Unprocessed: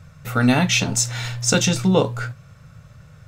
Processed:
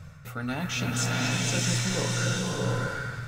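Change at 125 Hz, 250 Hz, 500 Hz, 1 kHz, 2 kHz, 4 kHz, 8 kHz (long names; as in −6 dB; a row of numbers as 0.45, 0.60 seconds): −5.0, −10.0, −9.5, −6.5, −5.0, −6.0, −7.5 decibels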